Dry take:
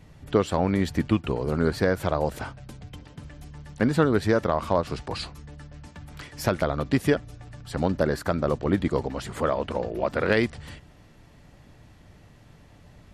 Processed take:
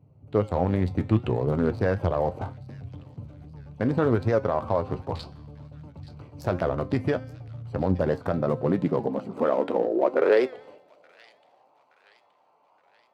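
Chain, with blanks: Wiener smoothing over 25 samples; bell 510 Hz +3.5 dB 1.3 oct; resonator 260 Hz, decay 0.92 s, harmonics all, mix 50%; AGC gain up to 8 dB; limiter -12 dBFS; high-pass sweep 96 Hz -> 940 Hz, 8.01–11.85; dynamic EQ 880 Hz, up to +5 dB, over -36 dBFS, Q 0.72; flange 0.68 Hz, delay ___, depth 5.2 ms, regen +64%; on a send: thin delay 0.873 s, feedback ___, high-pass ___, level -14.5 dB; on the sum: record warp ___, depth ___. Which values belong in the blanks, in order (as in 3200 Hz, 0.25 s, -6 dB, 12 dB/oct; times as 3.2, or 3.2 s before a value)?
6.8 ms, 52%, 2800 Hz, 78 rpm, 100 cents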